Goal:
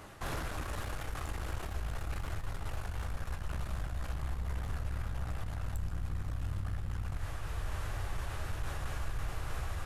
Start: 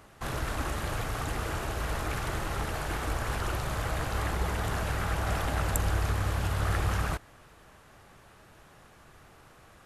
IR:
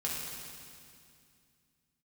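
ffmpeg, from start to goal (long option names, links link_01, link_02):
-filter_complex "[0:a]asubboost=boost=9:cutoff=71,dynaudnorm=framelen=240:gausssize=5:maxgain=14.5dB,aeval=exprs='clip(val(0),-1,0.0596)':channel_layout=same,areverse,acompressor=threshold=-35dB:ratio=4,areverse,alimiter=level_in=8dB:limit=-24dB:level=0:latency=1:release=58,volume=-8dB,flanger=delay=9.7:depth=7.1:regen=-52:speed=0.38:shape=triangular,asplit=2[link_01][link_02];[1:a]atrim=start_sample=2205,asetrate=29106,aresample=44100[link_03];[link_02][link_03]afir=irnorm=-1:irlink=0,volume=-17.5dB[link_04];[link_01][link_04]amix=inputs=2:normalize=0,volume=7dB"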